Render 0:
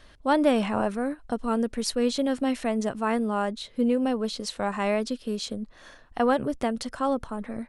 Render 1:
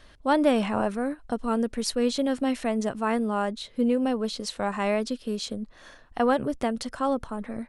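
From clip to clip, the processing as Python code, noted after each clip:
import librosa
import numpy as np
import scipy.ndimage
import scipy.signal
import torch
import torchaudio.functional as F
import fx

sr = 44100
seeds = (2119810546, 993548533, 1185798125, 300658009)

y = x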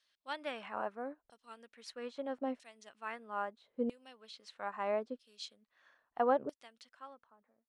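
y = fx.fade_out_tail(x, sr, length_s=1.27)
y = fx.filter_lfo_bandpass(y, sr, shape='saw_down', hz=0.77, low_hz=490.0, high_hz=5400.0, q=0.99)
y = fx.upward_expand(y, sr, threshold_db=-45.0, expansion=1.5)
y = F.gain(torch.from_numpy(y), -4.0).numpy()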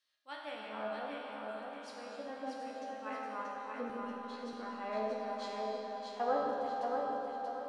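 y = fx.comb_fb(x, sr, f0_hz=72.0, decay_s=0.26, harmonics='all', damping=0.0, mix_pct=90)
y = fx.echo_feedback(y, sr, ms=633, feedback_pct=37, wet_db=-4)
y = fx.rev_freeverb(y, sr, rt60_s=4.1, hf_ratio=0.8, predelay_ms=10, drr_db=-2.0)
y = F.gain(torch.from_numpy(y), 1.5).numpy()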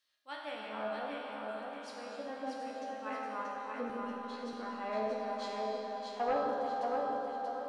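y = fx.fold_sine(x, sr, drive_db=3, ceiling_db=-20.0)
y = F.gain(torch.from_numpy(y), -5.0).numpy()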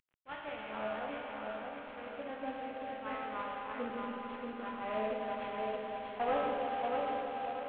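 y = fx.cvsd(x, sr, bps=16000)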